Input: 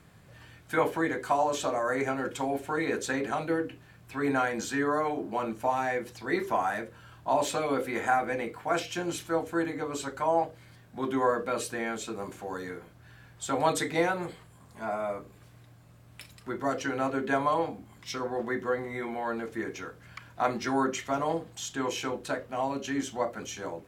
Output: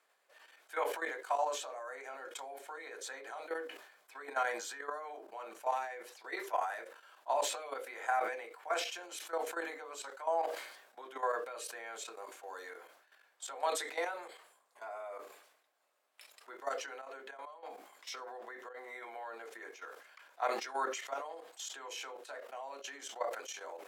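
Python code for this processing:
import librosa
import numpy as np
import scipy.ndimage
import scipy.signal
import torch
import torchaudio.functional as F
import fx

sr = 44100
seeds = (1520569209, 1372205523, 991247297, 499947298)

y = fx.notch(x, sr, hz=2700.0, q=12.0, at=(2.15, 5.23))
y = fx.over_compress(y, sr, threshold_db=-36.0, ratio=-1.0, at=(16.85, 19.59), fade=0.02)
y = fx.level_steps(y, sr, step_db=13)
y = scipy.signal.sosfilt(scipy.signal.butter(4, 500.0, 'highpass', fs=sr, output='sos'), y)
y = fx.sustainer(y, sr, db_per_s=68.0)
y = y * librosa.db_to_amplitude(-4.0)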